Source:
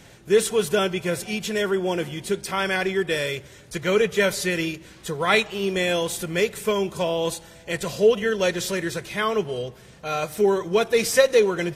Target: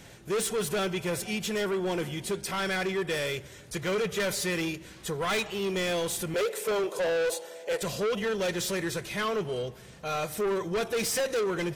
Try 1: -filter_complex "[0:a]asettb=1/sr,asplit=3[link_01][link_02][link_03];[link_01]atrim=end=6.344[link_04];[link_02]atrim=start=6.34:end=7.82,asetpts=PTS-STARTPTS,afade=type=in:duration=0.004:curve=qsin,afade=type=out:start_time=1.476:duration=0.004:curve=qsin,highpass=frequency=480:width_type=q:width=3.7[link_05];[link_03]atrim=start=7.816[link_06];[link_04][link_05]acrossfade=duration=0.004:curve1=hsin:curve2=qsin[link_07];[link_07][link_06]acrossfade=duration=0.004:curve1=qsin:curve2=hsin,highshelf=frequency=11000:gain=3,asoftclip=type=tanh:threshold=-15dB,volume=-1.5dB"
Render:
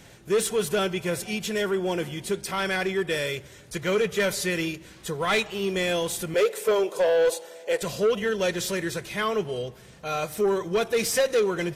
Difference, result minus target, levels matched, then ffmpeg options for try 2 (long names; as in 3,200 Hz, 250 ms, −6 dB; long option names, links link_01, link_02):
soft clipping: distortion −7 dB
-filter_complex "[0:a]asettb=1/sr,asplit=3[link_01][link_02][link_03];[link_01]atrim=end=6.344[link_04];[link_02]atrim=start=6.34:end=7.82,asetpts=PTS-STARTPTS,afade=type=in:duration=0.004:curve=qsin,afade=type=out:start_time=1.476:duration=0.004:curve=qsin,highpass=frequency=480:width_type=q:width=3.7[link_05];[link_03]atrim=start=7.816[link_06];[link_04][link_05]acrossfade=duration=0.004:curve1=hsin:curve2=qsin[link_07];[link_07][link_06]acrossfade=duration=0.004:curve1=qsin:curve2=hsin,highshelf=frequency=11000:gain=3,asoftclip=type=tanh:threshold=-23.5dB,volume=-1.5dB"